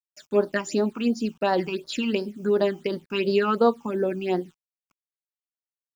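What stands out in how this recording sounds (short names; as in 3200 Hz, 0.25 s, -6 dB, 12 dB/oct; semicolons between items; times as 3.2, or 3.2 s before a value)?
tremolo triangle 5.8 Hz, depth 35%; a quantiser's noise floor 10-bit, dither none; phasing stages 8, 2.8 Hz, lowest notch 520–2600 Hz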